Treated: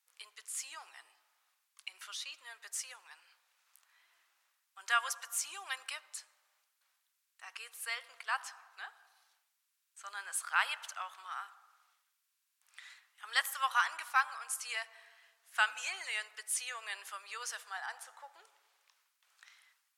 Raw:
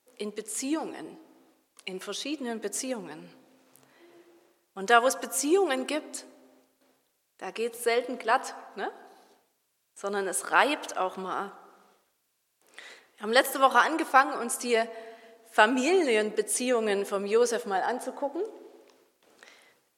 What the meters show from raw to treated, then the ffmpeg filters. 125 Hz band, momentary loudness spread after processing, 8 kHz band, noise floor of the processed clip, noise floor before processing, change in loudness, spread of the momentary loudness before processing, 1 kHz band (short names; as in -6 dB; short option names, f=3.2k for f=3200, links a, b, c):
n/a, 19 LU, -6.0 dB, -82 dBFS, -75 dBFS, -9.5 dB, 17 LU, -11.5 dB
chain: -af "highpass=f=1.1k:w=0.5412,highpass=f=1.1k:w=1.3066,volume=-6dB"